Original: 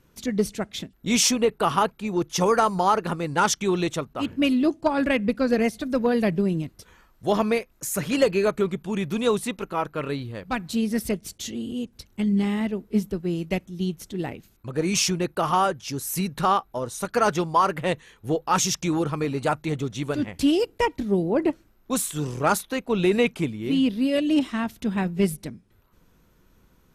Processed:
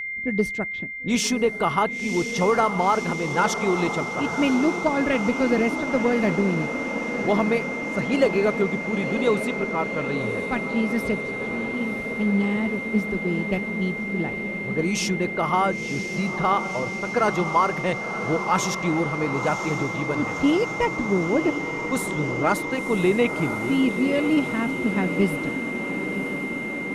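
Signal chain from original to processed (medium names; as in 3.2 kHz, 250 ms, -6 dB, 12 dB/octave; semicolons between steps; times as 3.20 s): level-controlled noise filter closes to 380 Hz, open at -21.5 dBFS; treble shelf 3.6 kHz -8 dB; whistle 2.1 kHz -28 dBFS; echo that smears into a reverb 1010 ms, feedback 76%, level -9 dB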